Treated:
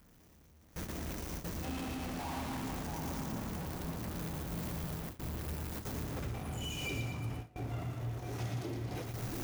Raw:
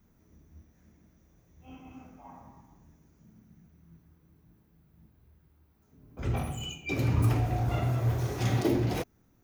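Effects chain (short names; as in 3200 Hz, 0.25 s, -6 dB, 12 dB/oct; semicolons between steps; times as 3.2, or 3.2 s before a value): zero-crossing step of -34 dBFS; compressor 8:1, threshold -38 dBFS, peak gain reduction 17.5 dB; split-band echo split 1700 Hz, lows 0.687 s, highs 0.115 s, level -4 dB; gate with hold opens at -31 dBFS; gain -1 dB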